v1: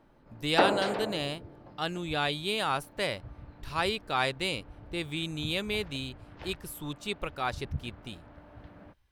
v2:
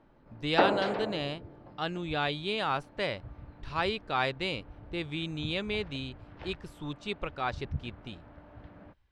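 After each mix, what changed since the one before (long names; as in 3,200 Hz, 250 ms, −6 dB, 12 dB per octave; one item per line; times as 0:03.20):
master: add high-frequency loss of the air 120 metres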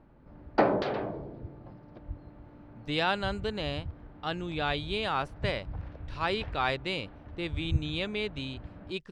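speech: entry +2.45 s
background: add low-shelf EQ 210 Hz +8.5 dB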